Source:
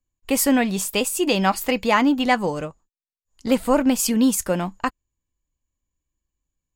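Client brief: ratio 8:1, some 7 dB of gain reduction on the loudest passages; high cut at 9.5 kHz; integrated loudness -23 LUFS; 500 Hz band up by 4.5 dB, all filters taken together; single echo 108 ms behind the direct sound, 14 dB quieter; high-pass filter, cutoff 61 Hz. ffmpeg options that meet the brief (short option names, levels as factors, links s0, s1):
-af "highpass=61,lowpass=9500,equalizer=f=500:t=o:g=5,acompressor=threshold=0.126:ratio=8,aecho=1:1:108:0.2,volume=1.12"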